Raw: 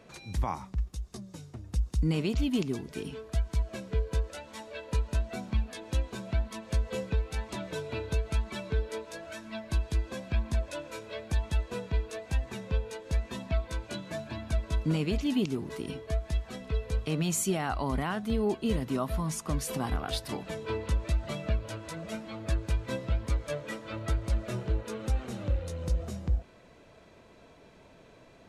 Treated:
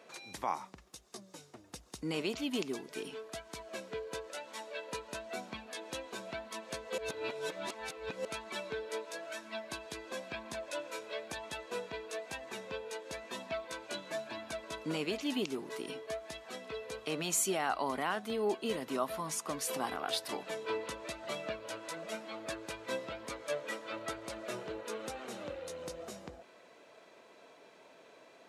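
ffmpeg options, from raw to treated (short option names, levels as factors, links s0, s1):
-filter_complex "[0:a]asplit=3[s0][s1][s2];[s0]atrim=end=6.982[s3];[s1]atrim=start=6.978:end=8.252,asetpts=PTS-STARTPTS,areverse[s4];[s2]atrim=start=8.248[s5];[s3][s4]acrossfade=d=0.004:c1=hsin:c2=hsin[s6];[s6][s5]acrossfade=d=0.004:c1=hsin:c2=hsin,highpass=390"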